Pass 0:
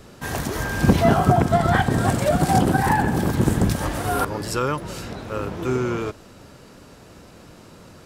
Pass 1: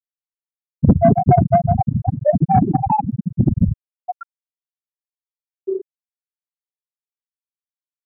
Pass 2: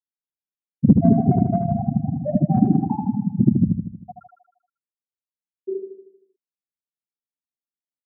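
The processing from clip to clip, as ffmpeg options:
ffmpeg -i in.wav -af "equalizer=frequency=1500:width=5.1:gain=-5,afftfilt=real='re*gte(hypot(re,im),0.794)':imag='im*gte(hypot(re,im),0.794)':win_size=1024:overlap=0.75,acontrast=84" out.wav
ffmpeg -i in.wav -filter_complex "[0:a]bandpass=frequency=230:width_type=q:width=1.8:csg=0,asplit=2[link_01][link_02];[link_02]aecho=0:1:78|156|234|312|390|468|546:0.531|0.287|0.155|0.0836|0.0451|0.0244|0.0132[link_03];[link_01][link_03]amix=inputs=2:normalize=0,volume=1.5dB" out.wav

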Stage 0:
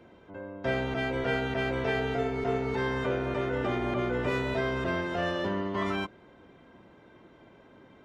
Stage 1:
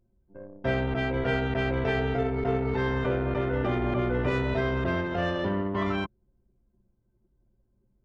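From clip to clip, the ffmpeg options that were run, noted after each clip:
ffmpeg -i in.wav -af "anlmdn=3.98,lowshelf=frequency=130:gain=9,volume=1dB" out.wav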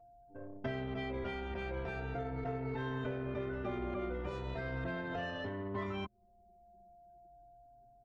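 ffmpeg -i in.wav -filter_complex "[0:a]aeval=exprs='val(0)+0.00126*sin(2*PI*700*n/s)':channel_layout=same,acompressor=threshold=-33dB:ratio=12,asplit=2[link_01][link_02];[link_02]adelay=4,afreqshift=-0.4[link_03];[link_01][link_03]amix=inputs=2:normalize=1,volume=1dB" out.wav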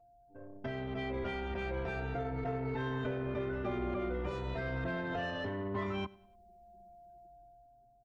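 ffmpeg -i in.wav -filter_complex "[0:a]dynaudnorm=framelen=180:gausssize=9:maxgain=6.5dB,asplit=2[link_01][link_02];[link_02]asoftclip=type=tanh:threshold=-32dB,volume=-8dB[link_03];[link_01][link_03]amix=inputs=2:normalize=0,aecho=1:1:97|194|291:0.075|0.0345|0.0159,volume=-6dB" out.wav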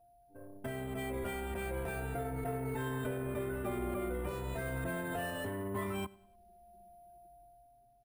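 ffmpeg -i in.wav -af "acrusher=samples=4:mix=1:aa=0.000001,volume=-1dB" out.wav

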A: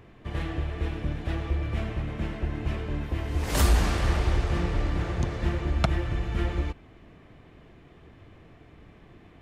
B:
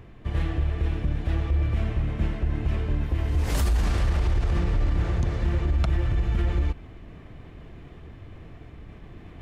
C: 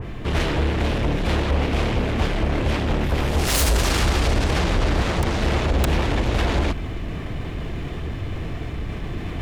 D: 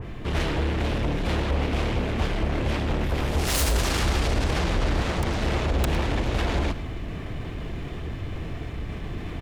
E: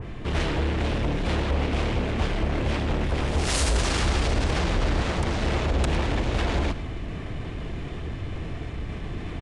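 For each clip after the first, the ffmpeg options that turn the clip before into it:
ffmpeg -i in.wav -af "lowshelf=frequency=120:gain=9.5,areverse,acompressor=mode=upward:threshold=-36dB:ratio=2.5,areverse,alimiter=limit=-16dB:level=0:latency=1:release=38" out.wav
ffmpeg -i in.wav -filter_complex "[0:a]asplit=2[link_01][link_02];[link_02]aeval=exprs='0.168*sin(PI/2*6.31*val(0)/0.168)':channel_layout=same,volume=-6dB[link_03];[link_01][link_03]amix=inputs=2:normalize=0,adynamicequalizer=threshold=0.00398:dfrequency=2600:dqfactor=0.7:tfrequency=2600:tqfactor=0.7:attack=5:release=100:ratio=0.375:range=2.5:mode=boostabove:tftype=highshelf" out.wav
ffmpeg -i in.wav -af "aecho=1:1:107:0.178,volume=-4dB" out.wav
ffmpeg -i in.wav -af "aresample=22050,aresample=44100" out.wav

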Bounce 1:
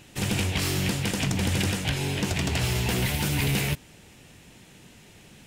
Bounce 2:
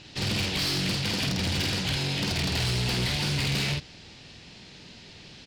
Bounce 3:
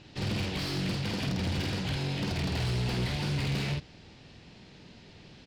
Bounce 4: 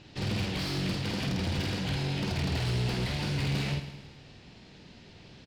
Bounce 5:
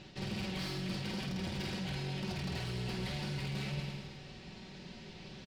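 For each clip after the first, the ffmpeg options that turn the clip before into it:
ffmpeg -i in.wav -filter_complex "[0:a]lowpass=frequency=4600:width_type=q:width=3.8,asplit=2[link_01][link_02];[link_02]adelay=49,volume=-4dB[link_03];[link_01][link_03]amix=inputs=2:normalize=0,asoftclip=type=tanh:threshold=-23.5dB" out.wav
ffmpeg -i in.wav -af "highshelf=frequency=2100:gain=-10,volume=-1.5dB" out.wav
ffmpeg -i in.wav -af "aecho=1:1:107|214|321|428|535|642:0.266|0.146|0.0805|0.0443|0.0243|0.0134" out.wav
ffmpeg -i in.wav -af "aecho=1:1:5.3:0.52,areverse,acompressor=threshold=-37dB:ratio=6,areverse,volume=1dB" out.wav

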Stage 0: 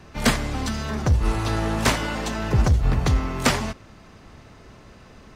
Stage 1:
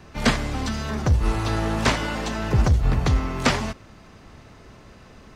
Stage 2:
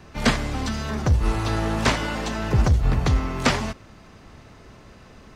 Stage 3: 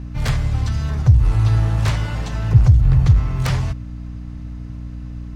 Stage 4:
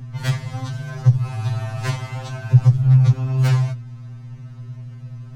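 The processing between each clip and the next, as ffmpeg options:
ffmpeg -i in.wav -filter_complex "[0:a]acrossover=split=7200[link_01][link_02];[link_02]acompressor=threshold=-47dB:ratio=4:attack=1:release=60[link_03];[link_01][link_03]amix=inputs=2:normalize=0" out.wav
ffmpeg -i in.wav -af anull out.wav
ffmpeg -i in.wav -af "aeval=exprs='0.501*(cos(1*acos(clip(val(0)/0.501,-1,1)))-cos(1*PI/2))+0.2*(cos(3*acos(clip(val(0)/0.501,-1,1)))-cos(3*PI/2))+0.126*(cos(5*acos(clip(val(0)/0.501,-1,1)))-cos(5*PI/2))+0.0126*(cos(7*acos(clip(val(0)/0.501,-1,1)))-cos(7*PI/2))':channel_layout=same,lowshelf=frequency=170:width_type=q:width=3:gain=10.5,aeval=exprs='val(0)+0.0447*(sin(2*PI*60*n/s)+sin(2*PI*2*60*n/s)/2+sin(2*PI*3*60*n/s)/3+sin(2*PI*4*60*n/s)/4+sin(2*PI*5*60*n/s)/5)':channel_layout=same,volume=-2dB" out.wav
ffmpeg -i in.wav -af "afftfilt=real='re*2.45*eq(mod(b,6),0)':imag='im*2.45*eq(mod(b,6),0)':win_size=2048:overlap=0.75" out.wav

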